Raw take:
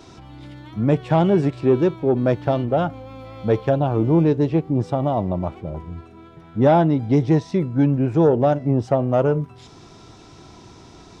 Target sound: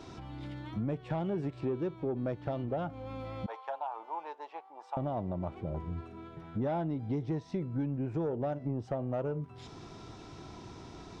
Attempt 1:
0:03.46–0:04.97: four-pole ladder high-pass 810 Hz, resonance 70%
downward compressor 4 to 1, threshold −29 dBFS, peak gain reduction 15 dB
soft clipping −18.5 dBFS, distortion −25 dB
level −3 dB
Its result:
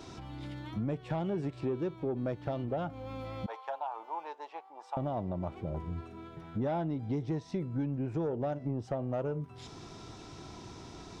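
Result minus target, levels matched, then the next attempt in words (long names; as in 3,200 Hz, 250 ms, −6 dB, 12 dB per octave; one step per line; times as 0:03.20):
8,000 Hz band +4.5 dB
0:03.46–0:04.97: four-pole ladder high-pass 810 Hz, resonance 70%
downward compressor 4 to 1, threshold −29 dBFS, peak gain reduction 15 dB
high-shelf EQ 5,300 Hz −8 dB
soft clipping −18.5 dBFS, distortion −25 dB
level −3 dB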